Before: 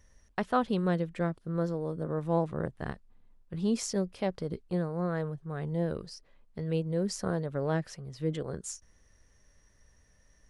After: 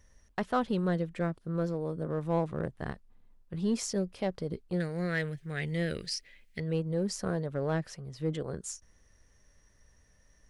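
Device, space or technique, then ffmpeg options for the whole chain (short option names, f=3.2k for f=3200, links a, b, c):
parallel distortion: -filter_complex "[0:a]asettb=1/sr,asplit=3[a][b][c];[a]atrim=end=4.804[d];[b]atrim=start=4.8:end=6.6,asetpts=PTS-STARTPTS,afade=t=in:d=0.004:c=qsin,afade=t=out:st=1.796:d=0.004:c=qsin,highshelf=f=1.5k:t=q:w=3:g=11[e];[c]atrim=start=6.596[f];[d][e]acrossfade=d=0.004:c1=hsin:c2=qsin[g];[g][f]acrossfade=d=0.004:c1=qsin:c2=hsin,asplit=2[h][i];[i]asoftclip=type=hard:threshold=-26dB,volume=-5dB[j];[h][j]amix=inputs=2:normalize=0,volume=-4dB"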